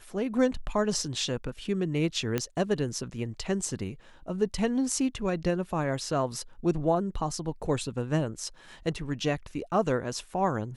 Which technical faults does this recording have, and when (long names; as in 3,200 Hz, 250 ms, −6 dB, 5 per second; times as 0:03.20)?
0:02.38: click −13 dBFS